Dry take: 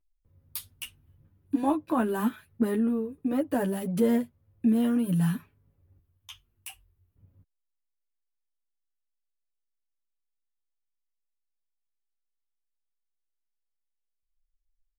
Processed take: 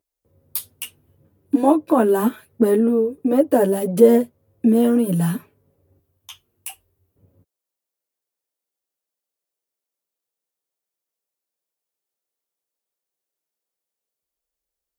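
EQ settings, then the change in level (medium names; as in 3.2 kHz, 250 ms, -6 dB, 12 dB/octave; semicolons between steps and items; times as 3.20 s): high-pass 82 Hz; peaking EQ 480 Hz +13.5 dB 1.8 oct; treble shelf 4.7 kHz +10 dB; +1.5 dB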